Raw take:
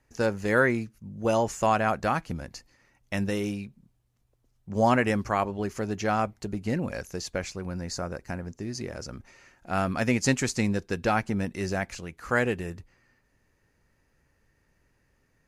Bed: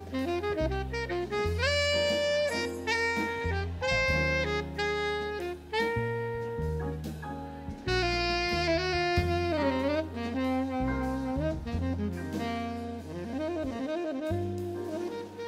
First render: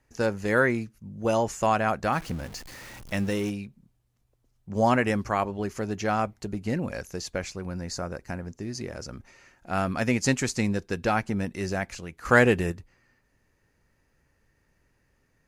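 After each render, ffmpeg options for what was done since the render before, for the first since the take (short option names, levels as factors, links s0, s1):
-filter_complex "[0:a]asettb=1/sr,asplit=3[s0][s1][s2];[s0]atrim=end=2.124[s3];[s1]atrim=start=2.12:end=3.5,asetpts=PTS-STARTPTS,afade=t=in:d=0.004:c=qsin,afade=t=out:st=1.376:d=0.004:c=qsin,aeval=exprs='val(0)+0.5*0.0119*sgn(val(0))':c=same[s4];[s2]atrim=start=3.496[s5];[s3][s4]acrossfade=d=0.004:c1=hsin:c2=qsin[s6];[s6][s5]acrossfade=d=0.004:c1=qsin:c2=hsin,asettb=1/sr,asplit=3[s7][s8][s9];[s7]atrim=end=12.254[s10];[s8]atrim=start=12.25:end=12.72,asetpts=PTS-STARTPTS,afade=t=in:d=0.004:c=qsin,afade=t=out:st=0.466:d=0.004:c=qsin,acontrast=79[s11];[s9]atrim=start=12.716[s12];[s10][s11]acrossfade=d=0.004:c1=hsin:c2=qsin[s13];[s13][s12]acrossfade=d=0.004:c1=qsin:c2=hsin"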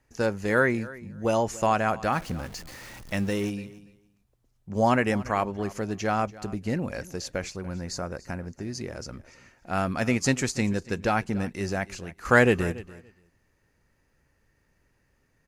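-af "aecho=1:1:287|574:0.112|0.0168"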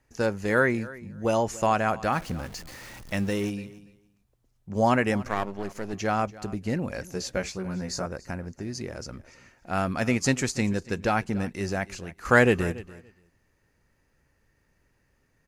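-filter_complex "[0:a]asettb=1/sr,asplit=3[s0][s1][s2];[s0]atrim=end=5.254[s3];[s1]atrim=start=5.25:end=5.93,asetpts=PTS-STARTPTS,afade=t=in:d=0.004:c=qsin,afade=t=out:st=0.676:d=0.004:c=qsin,aeval=exprs='if(lt(val(0),0),0.251*val(0),val(0))':c=same[s4];[s2]atrim=start=5.926[s5];[s3][s4]acrossfade=d=0.004:c1=hsin:c2=qsin[s6];[s6][s5]acrossfade=d=0.004:c1=qsin:c2=hsin,asettb=1/sr,asplit=3[s7][s8][s9];[s7]atrim=end=7.114[s10];[s8]atrim=start=7.11:end=8.06,asetpts=PTS-STARTPTS,afade=t=in:d=0.004:c=qsin,afade=t=out:st=0.946:d=0.004:c=qsin,asplit=2[s11][s12];[s12]adelay=16,volume=0.708[s13];[s11][s13]amix=inputs=2:normalize=0,atrim=end_sample=41895[s14];[s9]atrim=start=8.056[s15];[s10][s14]acrossfade=d=0.004:c1=hsin:c2=qsin[s16];[s16][s15]acrossfade=d=0.004:c1=qsin:c2=hsin"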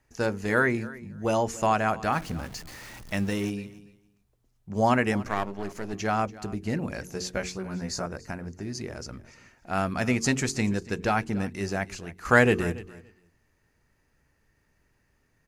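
-af "bandreject=f=530:w=12,bandreject=f=45.62:t=h:w=4,bandreject=f=91.24:t=h:w=4,bandreject=f=136.86:t=h:w=4,bandreject=f=182.48:t=h:w=4,bandreject=f=228.1:t=h:w=4,bandreject=f=273.72:t=h:w=4,bandreject=f=319.34:t=h:w=4,bandreject=f=364.96:t=h:w=4,bandreject=f=410.58:t=h:w=4,bandreject=f=456.2:t=h:w=4"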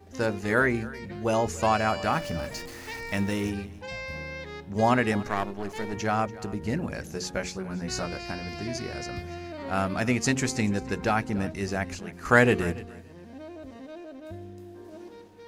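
-filter_complex "[1:a]volume=0.335[s0];[0:a][s0]amix=inputs=2:normalize=0"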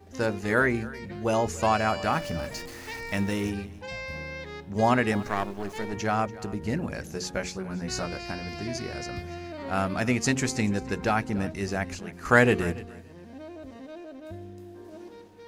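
-filter_complex "[0:a]asettb=1/sr,asplit=3[s0][s1][s2];[s0]atrim=end=5.084[s3];[s1]atrim=start=5.08:end=5.76,asetpts=PTS-STARTPTS,afade=t=in:d=0.004:c=qsin,afade=t=out:st=0.676:d=0.004:c=qsin,aeval=exprs='val(0)*gte(abs(val(0)),0.00398)':c=same[s4];[s2]atrim=start=5.756[s5];[s3][s4]acrossfade=d=0.004:c1=hsin:c2=qsin[s6];[s6][s5]acrossfade=d=0.004:c1=qsin:c2=hsin"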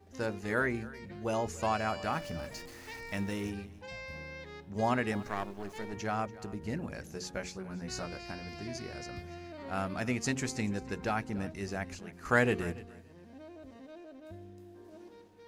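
-af "volume=0.422"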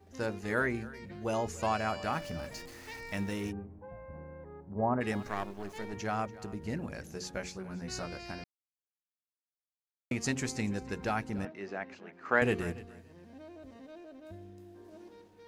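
-filter_complex "[0:a]asplit=3[s0][s1][s2];[s0]afade=t=out:st=3.51:d=0.02[s3];[s1]lowpass=f=1200:w=0.5412,lowpass=f=1200:w=1.3066,afade=t=in:st=3.51:d=0.02,afade=t=out:st=5:d=0.02[s4];[s2]afade=t=in:st=5:d=0.02[s5];[s3][s4][s5]amix=inputs=3:normalize=0,asettb=1/sr,asplit=3[s6][s7][s8];[s6]atrim=end=11.454[s9];[s7]atrim=start=11.45:end=12.42,asetpts=PTS-STARTPTS,afade=t=in:d=0.004:c=qsin,afade=t=out:st=0.966:d=0.004:c=qsin,highpass=280,lowpass=2700[s10];[s8]atrim=start=12.416[s11];[s9][s10]acrossfade=d=0.004:c1=hsin:c2=qsin[s12];[s12][s11]acrossfade=d=0.004:c1=qsin:c2=hsin,asplit=3[s13][s14][s15];[s13]atrim=end=8.44,asetpts=PTS-STARTPTS,afade=t=out:st=8.436:d=0.004:c=hsin[s16];[s14]atrim=start=8.44:end=10.11,asetpts=PTS-STARTPTS,volume=0[s17];[s15]atrim=start=10.11,asetpts=PTS-STARTPTS,afade=t=in:d=0.004:c=hsin[s18];[s16][s17][s18]concat=n=3:v=0:a=1"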